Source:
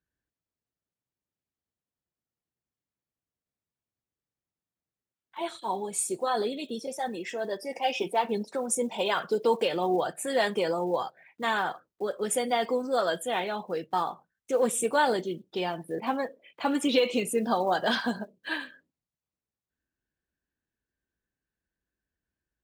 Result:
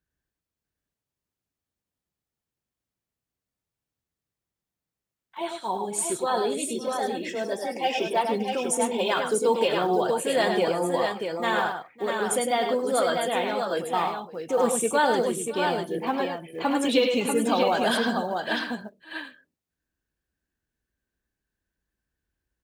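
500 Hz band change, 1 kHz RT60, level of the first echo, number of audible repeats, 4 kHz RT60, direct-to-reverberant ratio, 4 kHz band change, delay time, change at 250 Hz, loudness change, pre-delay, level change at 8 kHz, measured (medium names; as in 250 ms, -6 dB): +3.5 dB, no reverb, -6.0 dB, 3, no reverb, no reverb, +3.5 dB, 102 ms, +3.5 dB, +3.5 dB, no reverb, +3.5 dB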